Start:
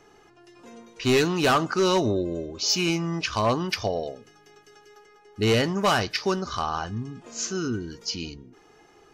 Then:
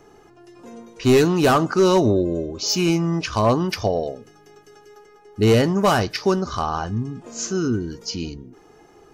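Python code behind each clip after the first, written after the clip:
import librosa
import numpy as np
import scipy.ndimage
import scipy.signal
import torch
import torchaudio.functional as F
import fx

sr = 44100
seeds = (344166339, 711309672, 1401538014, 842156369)

y = fx.peak_eq(x, sr, hz=3000.0, db=-8.0, octaves=2.8)
y = y * 10.0 ** (7.0 / 20.0)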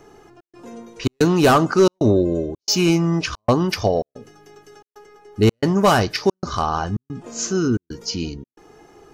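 y = fx.step_gate(x, sr, bpm=112, pattern='xxx.xxxx.xx', floor_db=-60.0, edge_ms=4.5)
y = y * 10.0 ** (2.5 / 20.0)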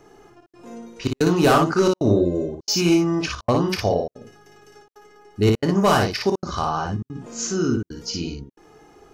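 y = fx.room_early_taps(x, sr, ms=(30, 57), db=(-10.5, -3.5))
y = y * 10.0 ** (-3.5 / 20.0)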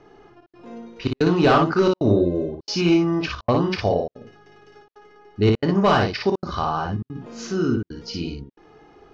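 y = scipy.signal.sosfilt(scipy.signal.butter(4, 4600.0, 'lowpass', fs=sr, output='sos'), x)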